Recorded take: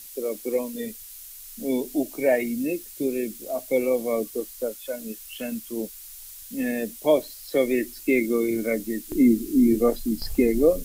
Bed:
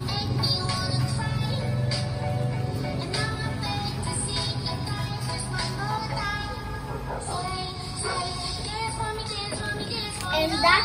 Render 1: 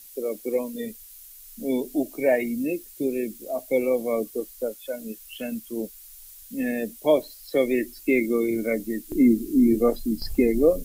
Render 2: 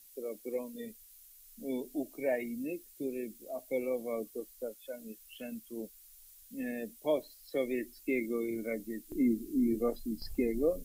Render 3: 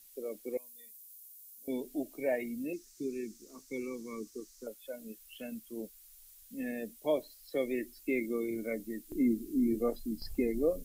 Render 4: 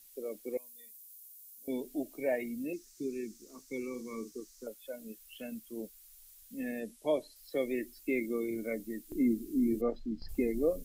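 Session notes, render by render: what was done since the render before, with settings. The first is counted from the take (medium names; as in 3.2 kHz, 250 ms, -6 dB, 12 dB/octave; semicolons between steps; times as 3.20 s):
noise reduction 6 dB, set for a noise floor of -43 dBFS
trim -11 dB
0.57–1.68 s: differentiator; 2.73–4.67 s: FFT filter 410 Hz 0 dB, 660 Hz -29 dB, 1 kHz 0 dB, 1.7 kHz +1 dB, 3.2 kHz -3 dB, 5.9 kHz +10 dB, 12 kHz -8 dB
3.89–4.32 s: doubling 48 ms -9 dB; 6.80–7.36 s: steep low-pass 12 kHz 48 dB/octave; 9.81–10.29 s: distance through air 170 m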